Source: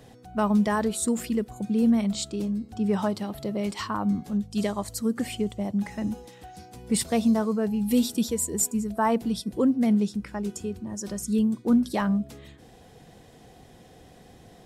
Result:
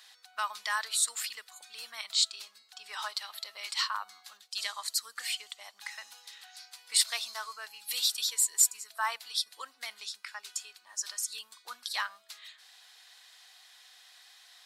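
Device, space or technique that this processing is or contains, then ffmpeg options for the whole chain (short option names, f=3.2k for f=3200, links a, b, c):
headphones lying on a table: -af "highpass=f=1.2k:w=0.5412,highpass=f=1.2k:w=1.3066,equalizer=f=4.2k:t=o:w=0.57:g=9,volume=1.5dB"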